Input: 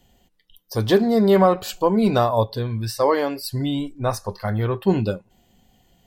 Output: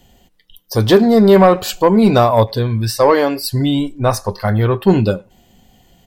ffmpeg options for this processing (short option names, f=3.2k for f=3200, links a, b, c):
-filter_complex "[0:a]asplit=2[a][b];[b]adelay=100,highpass=300,lowpass=3.4k,asoftclip=type=hard:threshold=-14dB,volume=-28dB[c];[a][c]amix=inputs=2:normalize=0,acontrast=73,volume=1.5dB"